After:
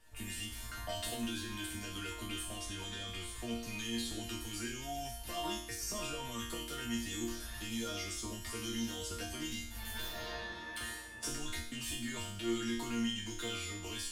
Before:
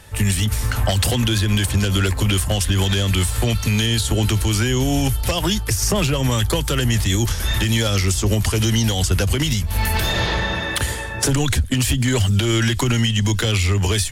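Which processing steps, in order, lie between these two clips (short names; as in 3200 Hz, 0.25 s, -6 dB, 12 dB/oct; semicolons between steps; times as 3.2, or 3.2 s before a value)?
2.55–3.6 high shelf 11000 Hz -11 dB; resonator bank A#3 sus4, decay 0.64 s; gain +3 dB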